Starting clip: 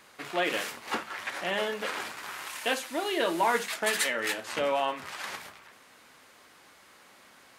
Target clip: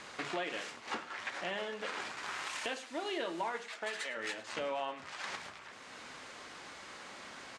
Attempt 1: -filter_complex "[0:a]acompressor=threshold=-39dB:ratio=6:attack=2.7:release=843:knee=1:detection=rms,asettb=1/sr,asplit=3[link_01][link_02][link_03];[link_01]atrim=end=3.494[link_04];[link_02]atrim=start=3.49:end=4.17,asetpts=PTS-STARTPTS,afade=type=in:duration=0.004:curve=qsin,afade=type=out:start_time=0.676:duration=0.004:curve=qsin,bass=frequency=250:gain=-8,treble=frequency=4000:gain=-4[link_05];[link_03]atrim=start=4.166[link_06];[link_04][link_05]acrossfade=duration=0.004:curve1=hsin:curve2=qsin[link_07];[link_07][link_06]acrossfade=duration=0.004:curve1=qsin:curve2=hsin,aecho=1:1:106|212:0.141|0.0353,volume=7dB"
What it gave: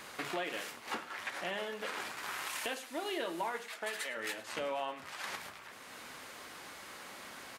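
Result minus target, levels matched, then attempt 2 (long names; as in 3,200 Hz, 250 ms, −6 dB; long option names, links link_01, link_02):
8,000 Hz band +2.5 dB
-filter_complex "[0:a]acompressor=threshold=-39dB:ratio=6:attack=2.7:release=843:knee=1:detection=rms,lowpass=frequency=7900:width=0.5412,lowpass=frequency=7900:width=1.3066,asettb=1/sr,asplit=3[link_01][link_02][link_03];[link_01]atrim=end=3.494[link_04];[link_02]atrim=start=3.49:end=4.17,asetpts=PTS-STARTPTS,afade=type=in:duration=0.004:curve=qsin,afade=type=out:start_time=0.676:duration=0.004:curve=qsin,bass=frequency=250:gain=-8,treble=frequency=4000:gain=-4[link_05];[link_03]atrim=start=4.166[link_06];[link_04][link_05]acrossfade=duration=0.004:curve1=hsin:curve2=qsin[link_07];[link_07][link_06]acrossfade=duration=0.004:curve1=qsin:curve2=hsin,aecho=1:1:106|212:0.141|0.0353,volume=7dB"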